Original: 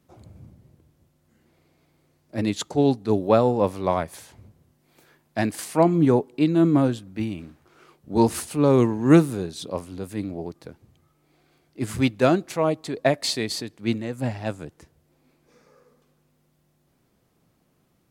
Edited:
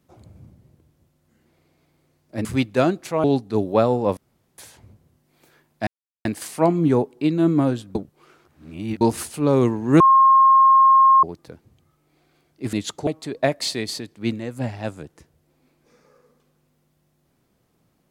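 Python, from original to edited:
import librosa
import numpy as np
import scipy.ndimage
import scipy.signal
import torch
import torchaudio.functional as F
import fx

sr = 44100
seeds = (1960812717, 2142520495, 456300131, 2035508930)

y = fx.edit(x, sr, fx.swap(start_s=2.45, length_s=0.34, other_s=11.9, other_length_s=0.79),
    fx.room_tone_fill(start_s=3.72, length_s=0.41),
    fx.insert_silence(at_s=5.42, length_s=0.38),
    fx.reverse_span(start_s=7.12, length_s=1.06),
    fx.bleep(start_s=9.17, length_s=1.23, hz=1070.0, db=-9.5), tone=tone)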